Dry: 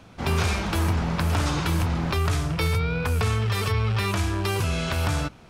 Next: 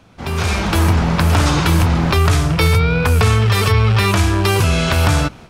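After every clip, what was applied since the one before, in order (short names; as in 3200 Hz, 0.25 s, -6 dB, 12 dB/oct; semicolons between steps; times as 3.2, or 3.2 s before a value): AGC gain up to 11.5 dB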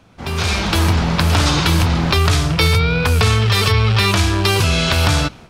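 dynamic EQ 4100 Hz, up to +7 dB, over -37 dBFS, Q 1; gain -1.5 dB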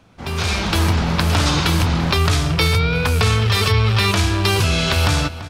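outdoor echo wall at 58 m, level -14 dB; gain -2 dB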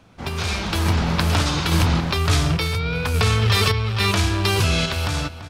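random-step tremolo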